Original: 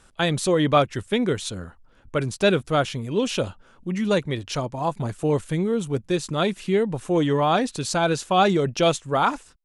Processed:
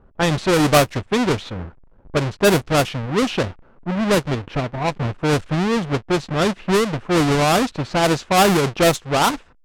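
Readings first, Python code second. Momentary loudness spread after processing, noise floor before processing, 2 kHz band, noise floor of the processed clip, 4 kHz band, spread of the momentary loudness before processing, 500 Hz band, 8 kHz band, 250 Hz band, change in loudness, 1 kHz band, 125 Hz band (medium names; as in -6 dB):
9 LU, -56 dBFS, +6.5 dB, -51 dBFS, +4.5 dB, 8 LU, +3.0 dB, +6.0 dB, +4.0 dB, +4.0 dB, +3.5 dB, +4.5 dB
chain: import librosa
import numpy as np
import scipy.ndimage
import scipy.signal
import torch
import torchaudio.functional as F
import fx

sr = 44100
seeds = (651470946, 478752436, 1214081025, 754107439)

y = fx.halfwave_hold(x, sr)
y = fx.env_lowpass(y, sr, base_hz=810.0, full_db=-12.0)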